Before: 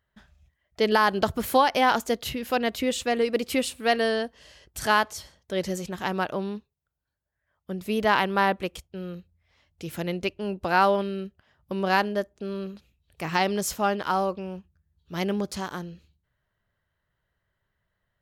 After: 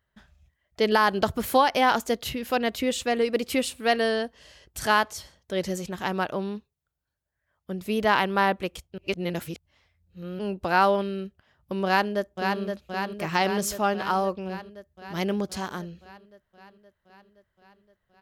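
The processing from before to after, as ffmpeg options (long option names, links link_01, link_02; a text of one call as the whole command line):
ffmpeg -i in.wav -filter_complex "[0:a]asplit=2[link_01][link_02];[link_02]afade=type=in:start_time=11.85:duration=0.01,afade=type=out:start_time=12.61:duration=0.01,aecho=0:1:520|1040|1560|2080|2600|3120|3640|4160|4680|5200|5720|6240:0.562341|0.393639|0.275547|0.192883|0.135018|0.0945127|0.0661589|0.0463112|0.0324179|0.0226925|0.0158848|0.0111193[link_03];[link_01][link_03]amix=inputs=2:normalize=0,asplit=3[link_04][link_05][link_06];[link_04]atrim=end=8.982[link_07];[link_05]atrim=start=8.978:end=10.392,asetpts=PTS-STARTPTS,areverse[link_08];[link_06]atrim=start=10.388[link_09];[link_07][link_08]acrossfade=duration=0.004:curve1=hsin:curve2=hsin[link_10];[link_10][link_09]acrossfade=duration=0.004:curve1=hsin:curve2=hsin" out.wav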